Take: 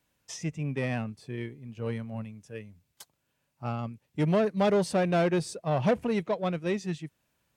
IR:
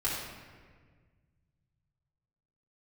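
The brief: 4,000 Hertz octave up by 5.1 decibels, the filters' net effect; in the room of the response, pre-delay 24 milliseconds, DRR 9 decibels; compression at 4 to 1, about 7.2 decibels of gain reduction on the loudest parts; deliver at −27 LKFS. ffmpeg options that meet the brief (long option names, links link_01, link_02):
-filter_complex "[0:a]equalizer=frequency=4000:width_type=o:gain=6.5,acompressor=threshold=-29dB:ratio=4,asplit=2[link_01][link_02];[1:a]atrim=start_sample=2205,adelay=24[link_03];[link_02][link_03]afir=irnorm=-1:irlink=0,volume=-16dB[link_04];[link_01][link_04]amix=inputs=2:normalize=0,volume=7dB"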